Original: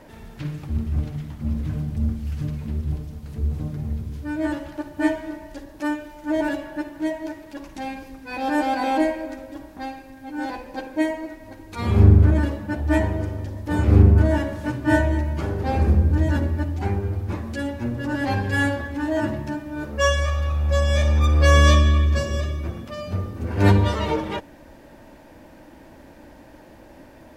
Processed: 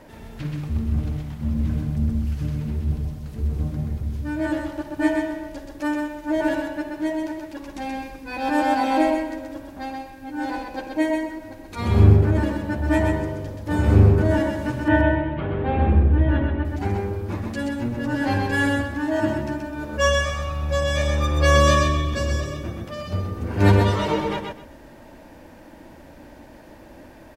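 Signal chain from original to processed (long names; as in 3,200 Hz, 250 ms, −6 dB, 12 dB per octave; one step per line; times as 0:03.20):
0:14.88–0:16.65: Butterworth low-pass 3,500 Hz 48 dB per octave
repeating echo 128 ms, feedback 21%, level −4 dB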